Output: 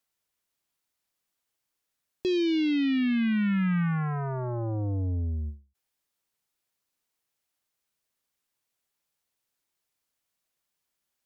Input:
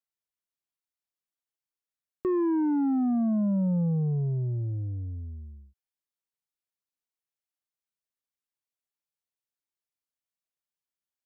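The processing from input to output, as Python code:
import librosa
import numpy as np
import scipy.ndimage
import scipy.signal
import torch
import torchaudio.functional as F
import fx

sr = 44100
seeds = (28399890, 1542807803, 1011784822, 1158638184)

p1 = fx.fold_sine(x, sr, drive_db=13, ceiling_db=-22.5)
p2 = x + (p1 * 10.0 ** (-9.0 / 20.0))
y = fx.end_taper(p2, sr, db_per_s=190.0)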